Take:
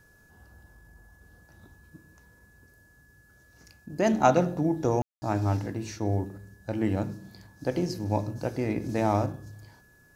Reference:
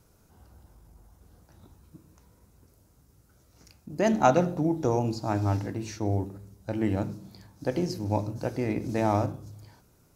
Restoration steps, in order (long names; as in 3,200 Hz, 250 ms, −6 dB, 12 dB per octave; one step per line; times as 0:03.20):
notch filter 1,700 Hz, Q 30
ambience match 0:05.02–0:05.22